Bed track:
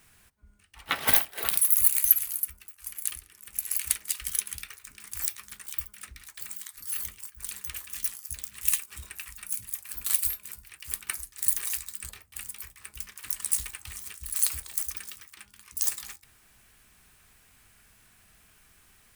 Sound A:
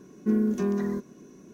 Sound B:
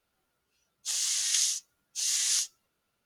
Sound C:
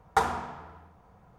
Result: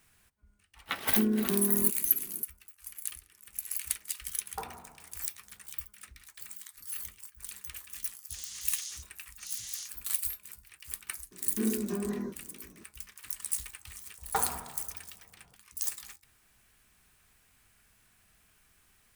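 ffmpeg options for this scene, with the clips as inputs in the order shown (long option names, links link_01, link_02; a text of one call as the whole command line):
ffmpeg -i bed.wav -i cue0.wav -i cue1.wav -i cue2.wav -filter_complex "[1:a]asplit=2[link_01][link_02];[3:a]asplit=2[link_03][link_04];[0:a]volume=-6dB[link_05];[link_03]lowpass=1200[link_06];[link_02]flanger=delay=16:depth=7.5:speed=2.2[link_07];[link_01]atrim=end=1.53,asetpts=PTS-STARTPTS,volume=-4dB,afade=type=in:duration=0.004:curve=hsin,afade=type=out:start_time=1.526:duration=0.004:curve=hsin,adelay=900[link_08];[link_06]atrim=end=1.38,asetpts=PTS-STARTPTS,volume=-14.5dB,afade=type=in:duration=0.004:curve=hsin,afade=type=out:start_time=1.376:duration=0.004:curve=hsin,adelay=194481S[link_09];[2:a]atrim=end=3.05,asetpts=PTS-STARTPTS,volume=-14.5dB,afade=type=in:duration=0.004:curve=hsin,afade=type=out:start_time=3.046:duration=0.004:curve=hsin,adelay=7440[link_10];[link_07]atrim=end=1.53,asetpts=PTS-STARTPTS,volume=-3dB,afade=type=in:duration=0.004:curve=hsin,afade=type=out:start_time=1.526:duration=0.004:curve=hsin,adelay=11310[link_11];[link_04]atrim=end=1.38,asetpts=PTS-STARTPTS,volume=-7.5dB,afade=type=in:duration=0.004:curve=hsin,afade=type=out:start_time=1.376:duration=0.004:curve=hsin,adelay=14180[link_12];[link_05][link_08][link_09][link_10][link_11][link_12]amix=inputs=6:normalize=0" out.wav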